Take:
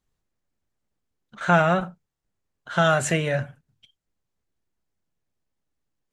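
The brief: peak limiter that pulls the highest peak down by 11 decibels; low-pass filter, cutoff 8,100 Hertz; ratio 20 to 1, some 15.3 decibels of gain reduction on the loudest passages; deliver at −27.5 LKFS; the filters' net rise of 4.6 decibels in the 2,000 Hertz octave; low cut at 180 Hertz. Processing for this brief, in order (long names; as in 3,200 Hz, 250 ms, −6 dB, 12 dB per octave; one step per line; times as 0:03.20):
high-pass filter 180 Hz
low-pass filter 8,100 Hz
parametric band 2,000 Hz +7 dB
downward compressor 20 to 1, threshold −28 dBFS
level +8 dB
brickwall limiter −17 dBFS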